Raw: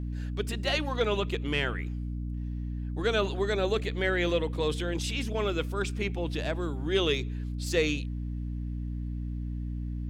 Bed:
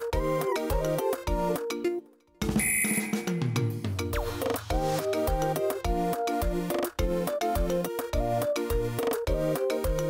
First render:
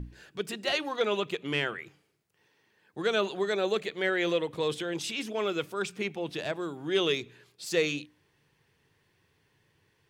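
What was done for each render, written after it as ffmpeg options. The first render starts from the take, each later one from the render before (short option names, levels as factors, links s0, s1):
-af "bandreject=f=60:t=h:w=6,bandreject=f=120:t=h:w=6,bandreject=f=180:t=h:w=6,bandreject=f=240:t=h:w=6,bandreject=f=300:t=h:w=6"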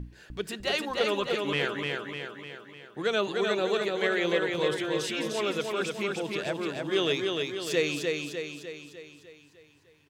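-af "aecho=1:1:301|602|903|1204|1505|1806|2107:0.668|0.361|0.195|0.105|0.0568|0.0307|0.0166"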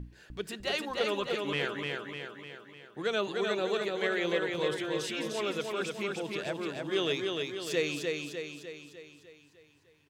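-af "volume=0.668"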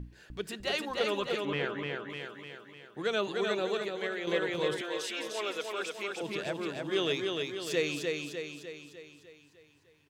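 -filter_complex "[0:a]asettb=1/sr,asplit=3[s0][s1][s2];[s0]atrim=end=1.454[s3];[s1]atrim=start=1.45:end=2.1,asetpts=PTS-STARTPTS,afade=t=in:d=0.004:c=qsin,afade=t=out:st=0.646:d=0.004:c=qsin,aemphasis=mode=reproduction:type=75fm[s4];[s2]atrim=start=2.096[s5];[s3][s4]acrossfade=d=0.004:c1=hsin:c2=qsin[s6];[s6][s5]acrossfade=d=0.004:c1=qsin:c2=hsin,asettb=1/sr,asplit=3[s7][s8][s9];[s7]atrim=end=4.814[s10];[s8]atrim=start=4.81:end=6.21,asetpts=PTS-STARTPTS,afade=t=in:d=0.004:c=qsin,afade=t=out:st=1.396:d=0.004:c=qsin,highpass=440[s11];[s9]atrim=start=6.206[s12];[s10][s11]acrossfade=d=0.004:c1=hsin:c2=qsin[s13];[s13][s12]acrossfade=d=0.004:c1=qsin:c2=hsin,asplit=2[s14][s15];[s14]atrim=end=4.27,asetpts=PTS-STARTPTS,afade=t=out:st=3.54:d=0.73:silence=0.446684[s16];[s15]atrim=start=4.27,asetpts=PTS-STARTPTS,afade=t=in:d=0.004:c=hsin:silence=0.446684[s17];[s16][s17]concat=n=2:v=0:a=1"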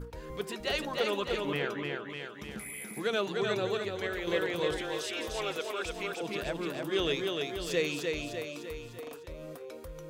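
-filter_complex "[1:a]volume=0.15[s0];[0:a][s0]amix=inputs=2:normalize=0"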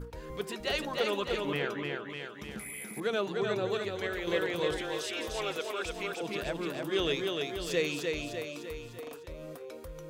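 -filter_complex "[0:a]asettb=1/sr,asplit=3[s0][s1][s2];[s0]atrim=end=3.004[s3];[s1]atrim=start=3:end=3.72,asetpts=PTS-STARTPTS,afade=t=in:d=0.004:c=qsin,afade=t=out:st=0.716:d=0.004:c=qsin,adynamicequalizer=threshold=0.00631:dfrequency=1600:dqfactor=0.7:tfrequency=1600:tqfactor=0.7:attack=5:release=100:ratio=0.375:range=2.5:mode=cutabove:tftype=highshelf[s4];[s2]atrim=start=3.716[s5];[s3][s4]acrossfade=d=0.004:c1=hsin:c2=qsin[s6];[s6][s5]acrossfade=d=0.004:c1=qsin:c2=hsin"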